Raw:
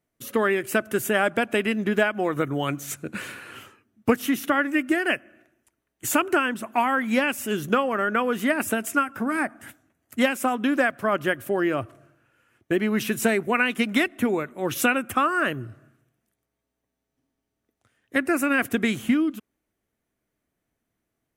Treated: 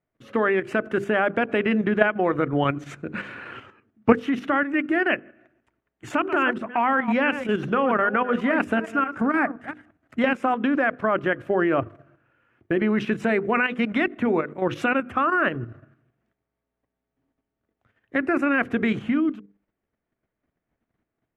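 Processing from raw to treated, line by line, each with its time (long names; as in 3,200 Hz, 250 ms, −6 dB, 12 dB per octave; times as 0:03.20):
0:06.08–0:10.29: delay that plays each chunk backwards 174 ms, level −12 dB
whole clip: low-pass filter 2,200 Hz 12 dB per octave; mains-hum notches 50/100/150/200/250/300/350/400/450/500 Hz; output level in coarse steps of 9 dB; level +6.5 dB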